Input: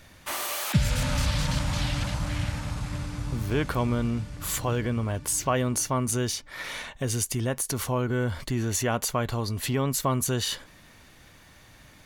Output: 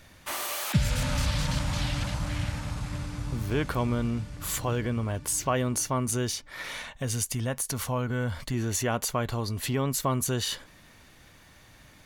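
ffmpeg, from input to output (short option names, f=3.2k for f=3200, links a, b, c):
-filter_complex "[0:a]asettb=1/sr,asplit=3[a][b][c];[a]atrim=end=6.744[d];[b]atrim=start=6.74:end=8.54,asetpts=PTS-STARTPTS,afade=t=in:d=0.004:c=qsin,afade=t=out:st=1.796:d=0.004:c=qsin,equalizer=f=360:t=o:w=0.42:g=-8[e];[c]atrim=start=8.536[f];[d][e]acrossfade=d=0.004:c1=hsin:c2=qsin[g];[g][f]acrossfade=d=0.004:c1=qsin:c2=hsin,volume=-1.5dB"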